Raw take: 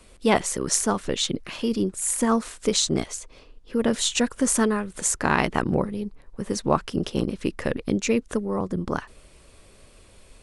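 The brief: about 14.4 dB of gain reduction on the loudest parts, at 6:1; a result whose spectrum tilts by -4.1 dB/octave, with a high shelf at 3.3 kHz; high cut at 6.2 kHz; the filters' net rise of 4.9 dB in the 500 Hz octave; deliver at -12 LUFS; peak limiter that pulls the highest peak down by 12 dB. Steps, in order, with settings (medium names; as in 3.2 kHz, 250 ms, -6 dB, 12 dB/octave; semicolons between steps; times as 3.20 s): low-pass 6.2 kHz; peaking EQ 500 Hz +6 dB; treble shelf 3.3 kHz -6 dB; compression 6:1, threshold -29 dBFS; trim +26.5 dB; peak limiter -0.5 dBFS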